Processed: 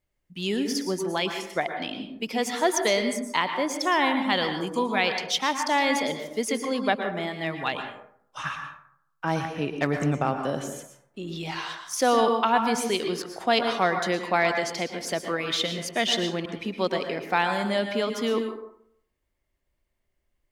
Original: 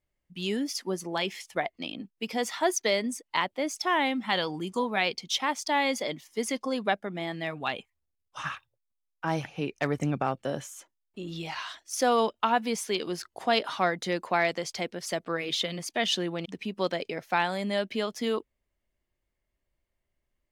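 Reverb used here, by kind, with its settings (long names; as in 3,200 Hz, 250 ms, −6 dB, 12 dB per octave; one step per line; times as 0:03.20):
dense smooth reverb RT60 0.67 s, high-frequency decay 0.45×, pre-delay 100 ms, DRR 5.5 dB
level +2.5 dB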